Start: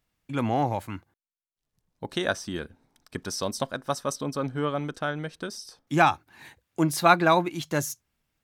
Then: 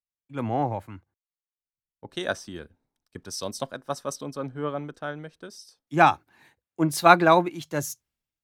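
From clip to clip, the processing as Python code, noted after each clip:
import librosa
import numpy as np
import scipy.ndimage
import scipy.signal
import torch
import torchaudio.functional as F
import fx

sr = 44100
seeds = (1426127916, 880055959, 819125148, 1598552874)

y = fx.peak_eq(x, sr, hz=470.0, db=2.5, octaves=1.5)
y = fx.band_widen(y, sr, depth_pct=70)
y = y * 10.0 ** (-3.5 / 20.0)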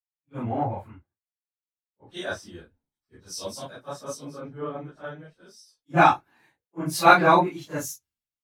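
y = fx.phase_scramble(x, sr, seeds[0], window_ms=100)
y = fx.band_widen(y, sr, depth_pct=40)
y = y * 10.0 ** (-2.5 / 20.0)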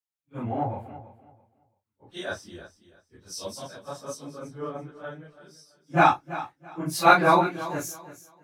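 y = fx.echo_feedback(x, sr, ms=333, feedback_pct=24, wet_db=-15.0)
y = y * 10.0 ** (-1.5 / 20.0)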